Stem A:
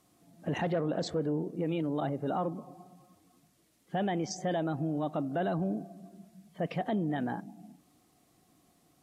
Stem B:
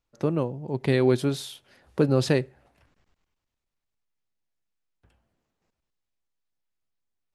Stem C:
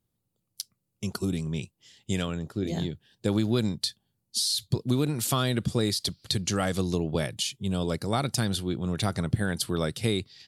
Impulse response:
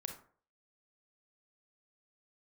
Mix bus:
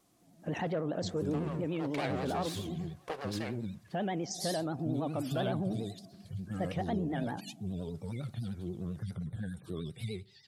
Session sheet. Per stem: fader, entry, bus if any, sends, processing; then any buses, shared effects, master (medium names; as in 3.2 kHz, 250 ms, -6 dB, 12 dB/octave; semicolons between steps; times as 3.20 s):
-3.0 dB, 0.00 s, no bus, no send, peaking EQ 6.1 kHz +2.5 dB
+1.0 dB, 1.10 s, bus A, send -15.5 dB, comb filter that takes the minimum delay 1.8 ms; high-pass 1.2 kHz 6 dB/octave; treble shelf 7.6 kHz -8.5 dB
-3.0 dB, 0.00 s, bus A, send -20 dB, harmonic-percussive separation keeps harmonic
bus A: 0.0 dB, compression 4:1, threshold -37 dBFS, peak gain reduction 12 dB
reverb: on, RT60 0.50 s, pre-delay 27 ms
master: vibrato 10 Hz 94 cents